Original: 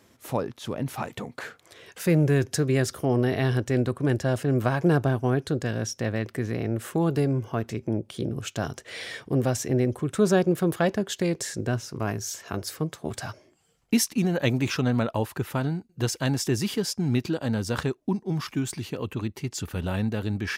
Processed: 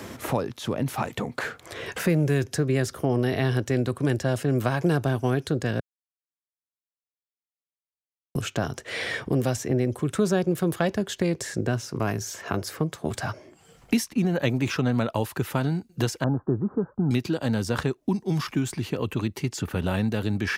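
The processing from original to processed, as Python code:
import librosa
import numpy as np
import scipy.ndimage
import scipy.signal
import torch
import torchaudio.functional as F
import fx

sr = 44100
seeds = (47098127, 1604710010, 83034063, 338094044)

y = fx.steep_lowpass(x, sr, hz=1400.0, slope=72, at=(16.24, 17.11))
y = fx.edit(y, sr, fx.silence(start_s=5.8, length_s=2.55), tone=tone)
y = fx.band_squash(y, sr, depth_pct=70)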